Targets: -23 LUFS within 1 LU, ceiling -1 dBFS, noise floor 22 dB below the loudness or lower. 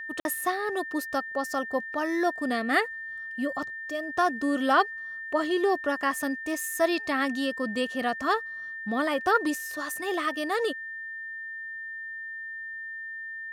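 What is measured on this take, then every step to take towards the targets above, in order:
dropouts 1; longest dropout 51 ms; steady tone 1.8 kHz; tone level -35 dBFS; loudness -29.0 LUFS; peak level -9.5 dBFS; loudness target -23.0 LUFS
-> interpolate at 0.20 s, 51 ms; band-stop 1.8 kHz, Q 30; trim +6 dB

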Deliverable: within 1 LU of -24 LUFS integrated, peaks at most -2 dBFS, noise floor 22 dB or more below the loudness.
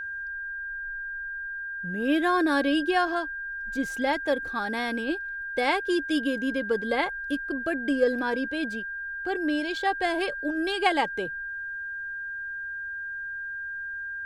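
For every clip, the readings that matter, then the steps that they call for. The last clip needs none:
steady tone 1.6 kHz; tone level -32 dBFS; loudness -28.0 LUFS; peak level -9.0 dBFS; loudness target -24.0 LUFS
-> band-stop 1.6 kHz, Q 30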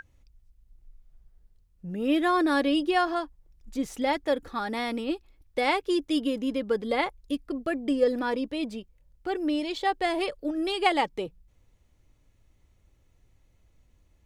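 steady tone not found; loudness -28.0 LUFS; peak level -9.0 dBFS; loudness target -24.0 LUFS
-> trim +4 dB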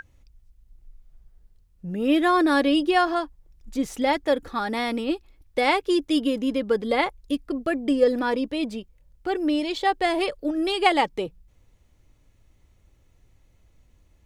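loudness -24.0 LUFS; peak level -5.0 dBFS; noise floor -61 dBFS

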